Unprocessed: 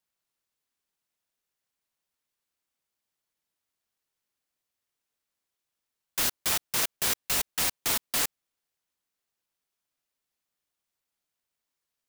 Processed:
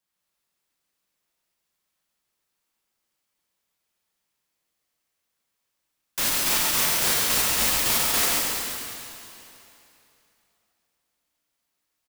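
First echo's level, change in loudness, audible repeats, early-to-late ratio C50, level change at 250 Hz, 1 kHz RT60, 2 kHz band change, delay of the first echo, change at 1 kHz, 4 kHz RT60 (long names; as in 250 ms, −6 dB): −4.0 dB, +6.0 dB, 1, −4.0 dB, +7.5 dB, 2.9 s, +7.0 dB, 137 ms, +7.5 dB, 2.7 s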